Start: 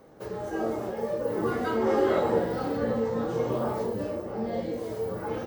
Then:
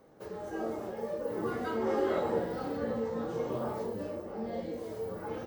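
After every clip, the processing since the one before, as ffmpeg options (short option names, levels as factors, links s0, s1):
-af "bandreject=f=60:t=h:w=6,bandreject=f=120:t=h:w=6,volume=0.501"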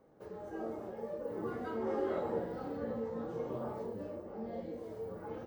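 -af "highshelf=f=2100:g=-8.5,volume=0.596"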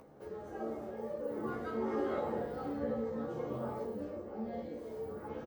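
-filter_complex "[0:a]acompressor=mode=upward:threshold=0.00224:ratio=2.5,asplit=2[s0][s1];[s1]adelay=14,volume=0.708[s2];[s0][s2]amix=inputs=2:normalize=0"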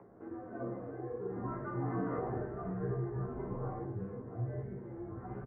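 -af "asubboost=boost=8:cutoff=150,highpass=f=200:t=q:w=0.5412,highpass=f=200:t=q:w=1.307,lowpass=f=2000:t=q:w=0.5176,lowpass=f=2000:t=q:w=0.7071,lowpass=f=2000:t=q:w=1.932,afreqshift=-100,volume=1.12"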